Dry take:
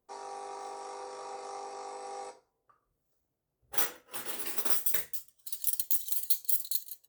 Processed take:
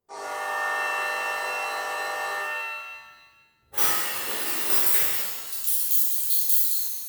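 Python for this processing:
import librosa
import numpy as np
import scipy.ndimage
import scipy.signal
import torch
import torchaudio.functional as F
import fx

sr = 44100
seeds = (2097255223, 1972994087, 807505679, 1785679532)

y = fx.level_steps(x, sr, step_db=9)
y = fx.rev_shimmer(y, sr, seeds[0], rt60_s=1.2, semitones=7, shimmer_db=-2, drr_db=-7.5)
y = y * librosa.db_to_amplitude(3.5)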